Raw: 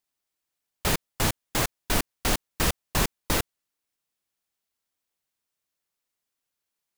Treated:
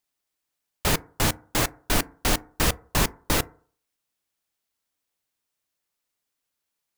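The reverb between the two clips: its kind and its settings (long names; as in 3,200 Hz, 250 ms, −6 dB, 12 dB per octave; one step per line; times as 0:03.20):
feedback delay network reverb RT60 0.48 s, low-frequency decay 0.9×, high-frequency decay 0.3×, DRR 16.5 dB
level +2 dB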